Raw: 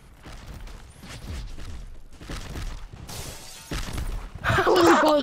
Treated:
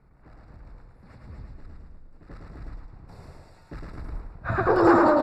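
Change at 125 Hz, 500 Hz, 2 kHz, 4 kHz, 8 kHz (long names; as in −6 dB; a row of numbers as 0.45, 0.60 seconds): −2.5, −0.5, −4.5, −17.5, −21.5 decibels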